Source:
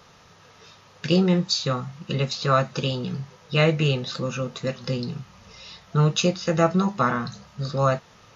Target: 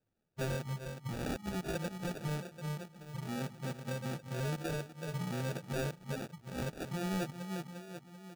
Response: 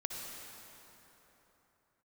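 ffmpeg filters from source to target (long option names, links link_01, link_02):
-filter_complex "[0:a]areverse,agate=range=-8dB:threshold=-38dB:ratio=16:detection=peak,afwtdn=0.0355,highshelf=frequency=2300:gain=-10.5,asplit=2[link_01][link_02];[link_02]adelay=368,lowpass=frequency=1100:poles=1,volume=-14.5dB,asplit=2[link_03][link_04];[link_04]adelay=368,lowpass=frequency=1100:poles=1,volume=0.49,asplit=2[link_05][link_06];[link_06]adelay=368,lowpass=frequency=1100:poles=1,volume=0.49,asplit=2[link_07][link_08];[link_08]adelay=368,lowpass=frequency=1100:poles=1,volume=0.49,asplit=2[link_09][link_10];[link_10]adelay=368,lowpass=frequency=1100:poles=1,volume=0.49[link_11];[link_01][link_03][link_05][link_07][link_09][link_11]amix=inputs=6:normalize=0,acompressor=threshold=-30dB:ratio=2.5,flanger=delay=2:depth=7.9:regen=-41:speed=0.63:shape=triangular,acrusher=samples=42:mix=1:aa=0.000001,acontrast=27,aeval=exprs='0.075*(abs(mod(val(0)/0.075+3,4)-2)-1)':channel_layout=same,volume=-7dB"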